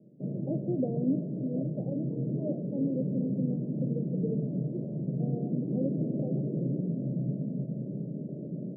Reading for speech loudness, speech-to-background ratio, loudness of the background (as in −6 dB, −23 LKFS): −36.5 LKFS, −3.0 dB, −33.5 LKFS